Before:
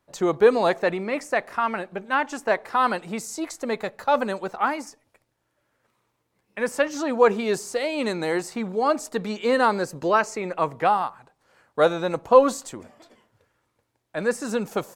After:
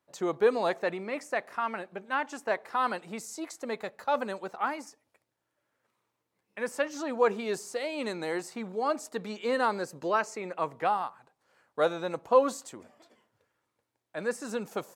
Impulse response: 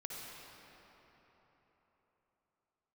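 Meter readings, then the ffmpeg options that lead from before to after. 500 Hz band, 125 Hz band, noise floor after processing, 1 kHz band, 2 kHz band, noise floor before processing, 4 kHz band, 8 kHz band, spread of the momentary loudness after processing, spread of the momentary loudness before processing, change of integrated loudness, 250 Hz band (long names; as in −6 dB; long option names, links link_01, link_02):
−7.5 dB, −10.0 dB, −82 dBFS, −7.0 dB, −7.0 dB, −74 dBFS, −7.0 dB, −7.0 dB, 12 LU, 12 LU, −7.5 dB, −8.5 dB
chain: -af "highpass=frequency=170:poles=1,volume=-7dB"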